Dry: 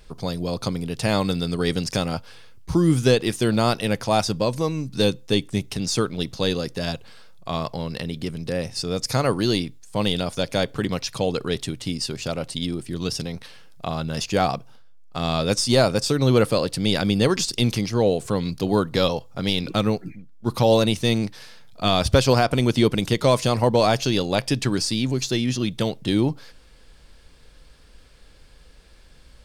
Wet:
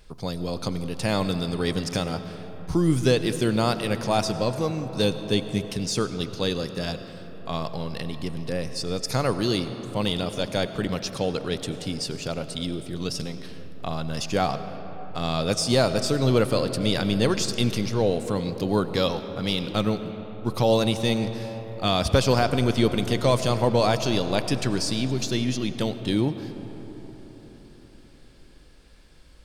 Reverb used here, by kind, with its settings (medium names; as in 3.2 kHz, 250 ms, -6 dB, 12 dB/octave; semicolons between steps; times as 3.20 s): algorithmic reverb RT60 4.8 s, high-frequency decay 0.4×, pre-delay 55 ms, DRR 10 dB; trim -3 dB